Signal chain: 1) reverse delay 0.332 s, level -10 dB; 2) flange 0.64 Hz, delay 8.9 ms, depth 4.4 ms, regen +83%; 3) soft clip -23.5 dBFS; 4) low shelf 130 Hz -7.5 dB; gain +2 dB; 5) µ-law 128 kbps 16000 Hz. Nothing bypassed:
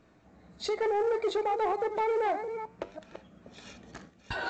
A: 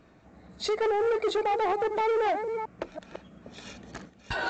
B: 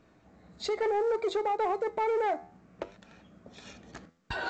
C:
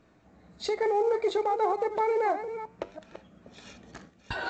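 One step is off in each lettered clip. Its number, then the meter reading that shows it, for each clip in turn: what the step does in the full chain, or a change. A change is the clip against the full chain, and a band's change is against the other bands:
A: 2, 4 kHz band +1.5 dB; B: 1, momentary loudness spread change -1 LU; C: 3, distortion -17 dB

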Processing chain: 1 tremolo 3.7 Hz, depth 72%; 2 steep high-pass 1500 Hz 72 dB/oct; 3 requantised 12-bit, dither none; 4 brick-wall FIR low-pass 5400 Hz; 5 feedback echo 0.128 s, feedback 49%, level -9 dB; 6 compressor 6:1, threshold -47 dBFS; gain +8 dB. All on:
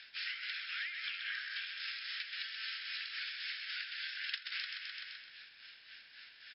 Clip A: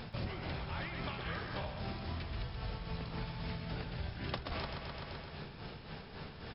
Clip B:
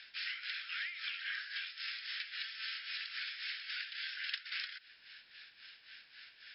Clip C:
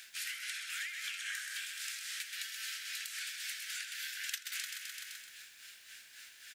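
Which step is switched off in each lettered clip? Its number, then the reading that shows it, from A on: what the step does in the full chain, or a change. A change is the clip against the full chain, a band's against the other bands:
2, crest factor change -3.0 dB; 5, momentary loudness spread change +1 LU; 4, momentary loudness spread change -1 LU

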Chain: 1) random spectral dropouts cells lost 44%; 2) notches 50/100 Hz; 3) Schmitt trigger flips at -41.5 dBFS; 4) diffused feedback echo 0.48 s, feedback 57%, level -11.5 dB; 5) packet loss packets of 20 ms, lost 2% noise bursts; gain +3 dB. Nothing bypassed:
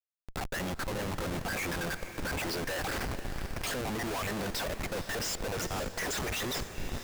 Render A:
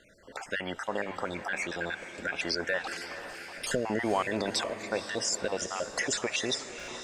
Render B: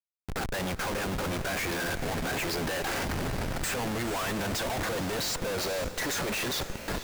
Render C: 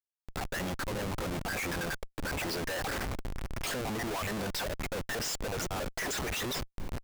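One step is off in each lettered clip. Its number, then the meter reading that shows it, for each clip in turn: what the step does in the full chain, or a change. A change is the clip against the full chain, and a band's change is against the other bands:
3, crest factor change +8.0 dB; 1, crest factor change -1.5 dB; 4, crest factor change -2.5 dB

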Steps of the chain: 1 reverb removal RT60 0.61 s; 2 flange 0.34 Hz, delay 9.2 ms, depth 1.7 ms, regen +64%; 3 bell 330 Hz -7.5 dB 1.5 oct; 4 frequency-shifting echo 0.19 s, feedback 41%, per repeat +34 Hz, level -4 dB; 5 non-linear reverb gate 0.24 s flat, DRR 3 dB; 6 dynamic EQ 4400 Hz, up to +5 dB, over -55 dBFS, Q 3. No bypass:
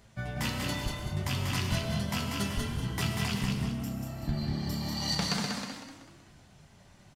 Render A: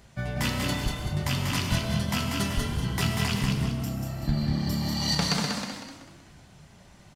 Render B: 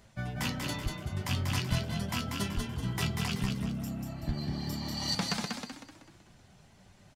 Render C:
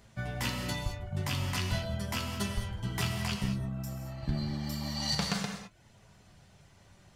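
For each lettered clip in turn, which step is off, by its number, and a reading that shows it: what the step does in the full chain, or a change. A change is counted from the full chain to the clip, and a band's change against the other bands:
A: 2, loudness change +4.5 LU; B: 5, loudness change -1.5 LU; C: 4, crest factor change +2.5 dB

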